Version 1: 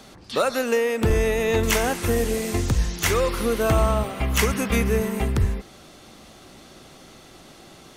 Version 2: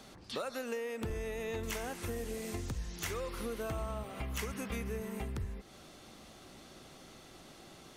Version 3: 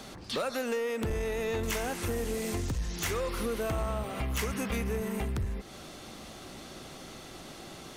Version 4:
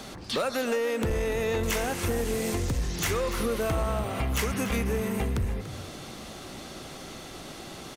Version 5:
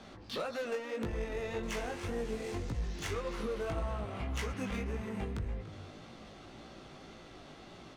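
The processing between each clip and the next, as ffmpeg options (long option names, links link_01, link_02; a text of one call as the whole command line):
ffmpeg -i in.wav -af "acompressor=threshold=-31dB:ratio=3,volume=-7.5dB" out.wav
ffmpeg -i in.wav -af "asoftclip=type=tanh:threshold=-33.5dB,volume=8.5dB" out.wav
ffmpeg -i in.wav -filter_complex "[0:a]asplit=4[link_01][link_02][link_03][link_04];[link_02]adelay=289,afreqshift=41,volume=-13dB[link_05];[link_03]adelay=578,afreqshift=82,volume=-22.6dB[link_06];[link_04]adelay=867,afreqshift=123,volume=-32.3dB[link_07];[link_01][link_05][link_06][link_07]amix=inputs=4:normalize=0,volume=4dB" out.wav
ffmpeg -i in.wav -af "flanger=delay=17:depth=3.4:speed=1.8,adynamicsmooth=sensitivity=7.5:basefreq=4200,volume=-6dB" out.wav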